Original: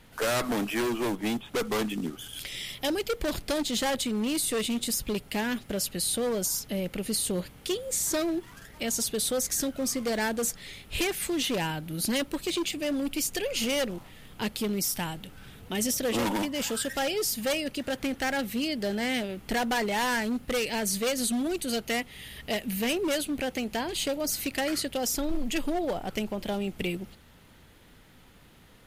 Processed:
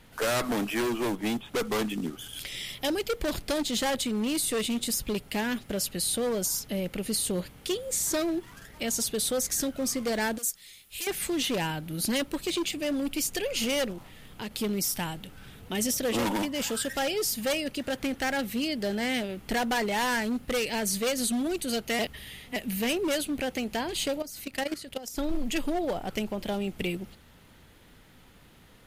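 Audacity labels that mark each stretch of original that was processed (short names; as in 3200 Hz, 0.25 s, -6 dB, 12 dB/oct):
10.380000	11.070000	pre-emphasis coefficient 0.9
13.920000	14.510000	compressor 2.5:1, threshold -35 dBFS
21.990000	22.560000	reverse
24.220000	25.180000	level quantiser steps of 14 dB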